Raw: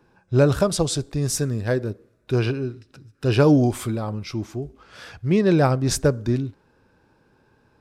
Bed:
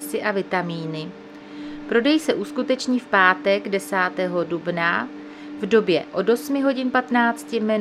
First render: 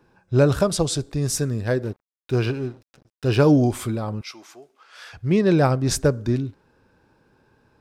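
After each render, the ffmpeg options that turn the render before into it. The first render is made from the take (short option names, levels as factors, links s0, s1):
-filter_complex "[0:a]asettb=1/sr,asplit=3[s0][s1][s2];[s0]atrim=end=1.834[s3];[s1]atrim=start=1.83:end=3.47,asetpts=PTS-STARTPTS,afade=t=in:d=0.004:c=qsin,afade=t=out:st=1.636:d=0.004:c=qsin,aeval=exprs='sgn(val(0))*max(abs(val(0))-0.00596,0)':c=same[s4];[s2]atrim=start=3.466[s5];[s3][s4]acrossfade=d=0.004:c1=hsin:c2=qsin[s6];[s6][s5]acrossfade=d=0.004:c1=qsin:c2=hsin,asettb=1/sr,asplit=3[s7][s8][s9];[s7]atrim=end=4.214[s10];[s8]atrim=start=4.21:end=5.13,asetpts=PTS-STARTPTS,afade=t=in:d=0.004:c=qsin,afade=t=out:st=0.916:d=0.004:c=qsin,highpass=830[s11];[s9]atrim=start=5.126[s12];[s10][s11]acrossfade=d=0.004:c1=hsin:c2=qsin[s13];[s13][s12]acrossfade=d=0.004:c1=qsin:c2=hsin"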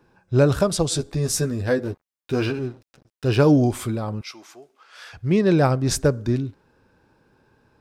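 -filter_complex "[0:a]asettb=1/sr,asplit=3[s0][s1][s2];[s0]atrim=end=0.904[s3];[s1]atrim=start=0.9:end=2.59,asetpts=PTS-STARTPTS,afade=t=in:d=0.004:c=qsin,afade=t=out:st=1.686:d=0.004:c=qsin,asplit=2[s4][s5];[s5]adelay=12,volume=0.668[s6];[s4][s6]amix=inputs=2:normalize=0,atrim=end_sample=74529[s7];[s2]atrim=start=2.586[s8];[s3][s7]acrossfade=d=0.004:c1=hsin:c2=qsin[s9];[s9][s8]acrossfade=d=0.004:c1=qsin:c2=hsin"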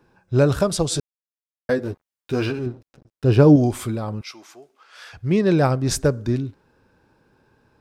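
-filter_complex "[0:a]asettb=1/sr,asplit=3[s0][s1][s2];[s0]atrim=end=2.664[s3];[s1]atrim=start=2.66:end=3.56,asetpts=PTS-STARTPTS,afade=t=in:d=0.004:c=qsin,afade=t=out:st=0.896:d=0.004:c=qsin,tiltshelf=f=910:g=5[s4];[s2]atrim=start=3.556[s5];[s3][s4]acrossfade=d=0.004:c1=hsin:c2=qsin[s6];[s6][s5]acrossfade=d=0.004:c1=qsin:c2=hsin,asplit=3[s7][s8][s9];[s7]atrim=end=1,asetpts=PTS-STARTPTS,afade=t=out:st=0.996:d=0.004:c=hsin[s10];[s8]atrim=start=1:end=1.69,asetpts=PTS-STARTPTS,volume=0[s11];[s9]atrim=start=1.69,asetpts=PTS-STARTPTS,afade=t=in:d=0.004:c=hsin[s12];[s10][s11][s12]concat=n=3:v=0:a=1"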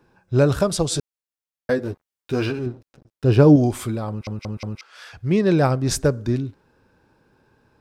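-filter_complex "[0:a]asplit=5[s0][s1][s2][s3][s4];[s0]atrim=end=4.272[s5];[s1]atrim=start=4.088:end=4.272[s6];[s2]atrim=start=4.088:end=4.272[s7];[s3]atrim=start=4.088:end=4.272[s8];[s4]atrim=start=4.808[s9];[s5][s6]acrossfade=d=0.004:c1=hsin:c2=hsin[s10];[s10][s7]acrossfade=d=0.004:c1=hsin:c2=hsin[s11];[s11][s8]acrossfade=d=0.004:c1=hsin:c2=hsin[s12];[s12][s9]acrossfade=d=0.004:c1=hsin:c2=hsin"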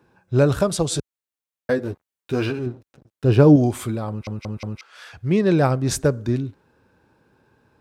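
-af "highpass=48,equalizer=f=5100:t=o:w=0.34:g=-3.5"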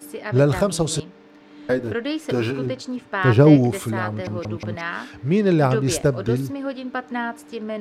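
-filter_complex "[1:a]volume=0.398[s0];[0:a][s0]amix=inputs=2:normalize=0"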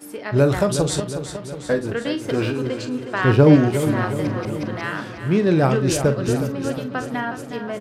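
-filter_complex "[0:a]asplit=2[s0][s1];[s1]adelay=44,volume=0.282[s2];[s0][s2]amix=inputs=2:normalize=0,aecho=1:1:364|728|1092|1456|1820|2184|2548:0.316|0.19|0.114|0.0683|0.041|0.0246|0.0148"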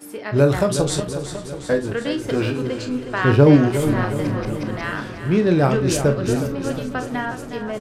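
-filter_complex "[0:a]asplit=2[s0][s1];[s1]adelay=28,volume=0.266[s2];[s0][s2]amix=inputs=2:normalize=0,asplit=6[s3][s4][s5][s6][s7][s8];[s4]adelay=462,afreqshift=-130,volume=0.1[s9];[s5]adelay=924,afreqshift=-260,volume=0.061[s10];[s6]adelay=1386,afreqshift=-390,volume=0.0372[s11];[s7]adelay=1848,afreqshift=-520,volume=0.0226[s12];[s8]adelay=2310,afreqshift=-650,volume=0.0138[s13];[s3][s9][s10][s11][s12][s13]amix=inputs=6:normalize=0"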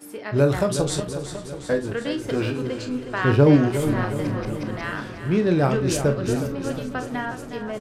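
-af "volume=0.708"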